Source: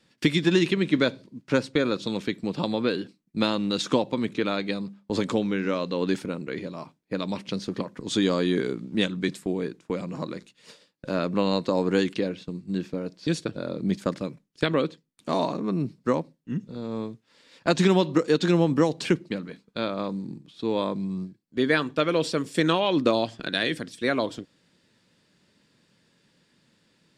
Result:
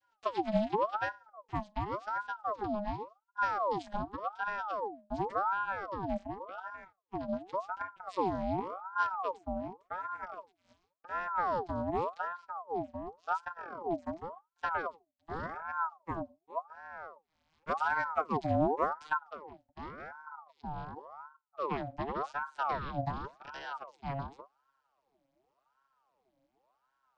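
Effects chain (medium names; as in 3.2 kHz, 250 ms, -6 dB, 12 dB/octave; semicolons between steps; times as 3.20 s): vocoder on a note that slides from A3, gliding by -9 st; ring modulator with a swept carrier 820 Hz, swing 50%, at 0.89 Hz; trim -6 dB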